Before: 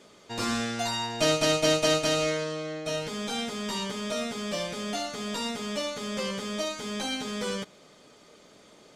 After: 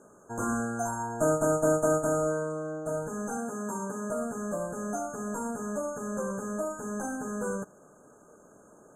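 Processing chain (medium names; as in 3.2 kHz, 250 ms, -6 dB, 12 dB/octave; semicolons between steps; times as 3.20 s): 3.37–4.10 s: high-pass 140 Hz; FFT band-reject 1.7–6.3 kHz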